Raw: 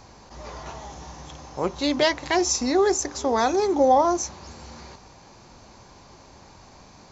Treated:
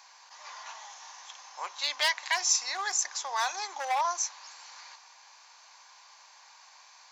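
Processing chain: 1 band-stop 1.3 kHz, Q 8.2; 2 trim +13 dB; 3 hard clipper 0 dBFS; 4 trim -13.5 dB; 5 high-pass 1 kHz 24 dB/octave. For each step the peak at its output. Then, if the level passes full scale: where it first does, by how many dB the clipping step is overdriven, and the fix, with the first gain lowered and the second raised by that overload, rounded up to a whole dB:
-8.0 dBFS, +5.0 dBFS, 0.0 dBFS, -13.5 dBFS, -12.0 dBFS; step 2, 5.0 dB; step 2 +8 dB, step 4 -8.5 dB

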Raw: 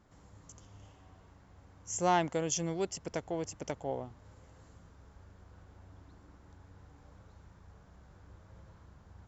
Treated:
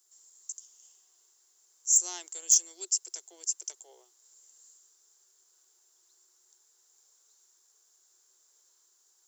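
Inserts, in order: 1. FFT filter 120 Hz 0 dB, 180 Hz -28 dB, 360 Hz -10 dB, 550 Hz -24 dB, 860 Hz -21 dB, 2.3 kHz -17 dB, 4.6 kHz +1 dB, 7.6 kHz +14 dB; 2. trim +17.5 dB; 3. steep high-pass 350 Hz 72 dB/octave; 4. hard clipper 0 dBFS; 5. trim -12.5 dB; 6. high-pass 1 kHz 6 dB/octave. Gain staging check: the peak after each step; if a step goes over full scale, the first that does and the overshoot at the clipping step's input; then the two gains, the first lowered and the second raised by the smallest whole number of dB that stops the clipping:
-10.0 dBFS, +7.5 dBFS, +7.5 dBFS, 0.0 dBFS, -12.5 dBFS, -11.5 dBFS; step 2, 7.5 dB; step 2 +9.5 dB, step 5 -4.5 dB

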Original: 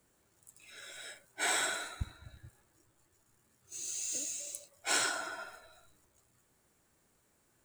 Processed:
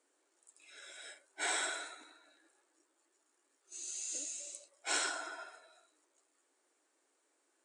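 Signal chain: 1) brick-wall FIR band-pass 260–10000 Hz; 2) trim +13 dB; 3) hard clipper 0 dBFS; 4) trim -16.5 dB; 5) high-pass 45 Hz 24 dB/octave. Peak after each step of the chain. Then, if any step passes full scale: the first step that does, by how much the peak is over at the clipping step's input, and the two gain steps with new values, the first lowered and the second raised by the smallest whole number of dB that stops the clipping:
-16.5 dBFS, -3.5 dBFS, -3.5 dBFS, -20.0 dBFS, -20.0 dBFS; nothing clips

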